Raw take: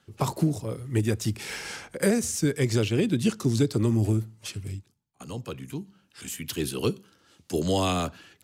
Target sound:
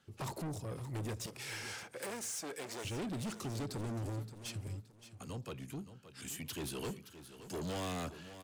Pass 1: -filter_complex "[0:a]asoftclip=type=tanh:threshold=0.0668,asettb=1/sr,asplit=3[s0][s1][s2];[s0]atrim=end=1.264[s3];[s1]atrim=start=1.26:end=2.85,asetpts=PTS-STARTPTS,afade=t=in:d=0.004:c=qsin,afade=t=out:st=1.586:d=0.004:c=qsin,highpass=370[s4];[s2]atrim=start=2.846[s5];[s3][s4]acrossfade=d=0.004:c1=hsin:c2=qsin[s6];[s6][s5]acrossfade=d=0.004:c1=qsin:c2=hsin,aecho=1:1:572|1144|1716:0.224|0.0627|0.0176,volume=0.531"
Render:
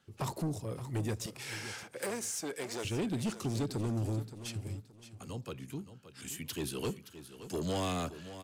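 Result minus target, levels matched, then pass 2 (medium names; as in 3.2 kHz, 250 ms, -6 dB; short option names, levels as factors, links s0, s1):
saturation: distortion -5 dB
-filter_complex "[0:a]asoftclip=type=tanh:threshold=0.0266,asettb=1/sr,asplit=3[s0][s1][s2];[s0]atrim=end=1.264[s3];[s1]atrim=start=1.26:end=2.85,asetpts=PTS-STARTPTS,afade=t=in:d=0.004:c=qsin,afade=t=out:st=1.586:d=0.004:c=qsin,highpass=370[s4];[s2]atrim=start=2.846[s5];[s3][s4]acrossfade=d=0.004:c1=hsin:c2=qsin[s6];[s6][s5]acrossfade=d=0.004:c1=qsin:c2=hsin,aecho=1:1:572|1144|1716:0.224|0.0627|0.0176,volume=0.531"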